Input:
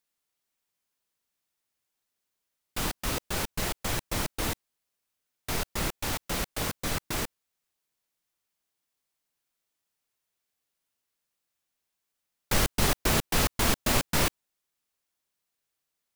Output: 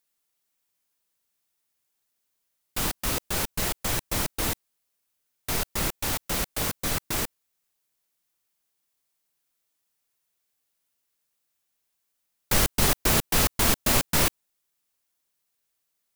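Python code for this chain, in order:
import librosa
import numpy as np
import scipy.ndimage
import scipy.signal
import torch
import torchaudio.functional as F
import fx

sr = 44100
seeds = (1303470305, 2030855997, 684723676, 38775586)

y = fx.high_shelf(x, sr, hz=7500.0, db=6.0)
y = y * librosa.db_to_amplitude(1.5)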